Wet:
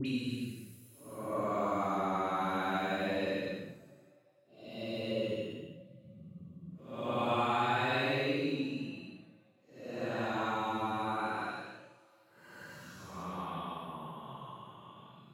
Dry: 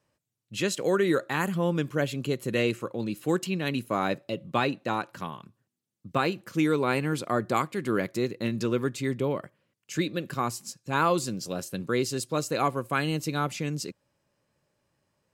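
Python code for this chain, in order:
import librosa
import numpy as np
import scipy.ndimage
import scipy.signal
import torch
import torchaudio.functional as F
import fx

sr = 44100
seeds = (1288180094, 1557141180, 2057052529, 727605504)

y = fx.paulstretch(x, sr, seeds[0], factor=9.1, window_s=0.1, from_s=3.76)
y = fx.hum_notches(y, sr, base_hz=50, count=4)
y = fx.dispersion(y, sr, late='highs', ms=58.0, hz=1700.0)
y = F.gain(torch.from_numpy(y), -6.5).numpy()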